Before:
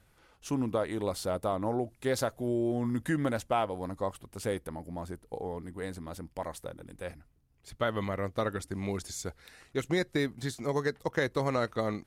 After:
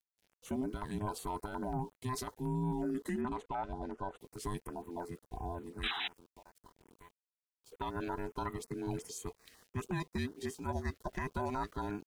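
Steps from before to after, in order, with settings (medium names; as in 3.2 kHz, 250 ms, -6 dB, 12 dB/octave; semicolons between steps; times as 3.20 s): every band turned upside down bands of 500 Hz; dynamic bell 680 Hz, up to +7 dB, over -49 dBFS, Q 3; peak limiter -22.5 dBFS, peak gain reduction 9 dB; 5.87–7.73 s: compression 4:1, threshold -54 dBFS, peak gain reduction 19.5 dB; 5.83–6.08 s: painted sound noise 700–4000 Hz -30 dBFS; small samples zeroed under -53.5 dBFS; 3.21–4.18 s: distance through air 100 m; step-sequenced notch 11 Hz 910–5100 Hz; trim -4 dB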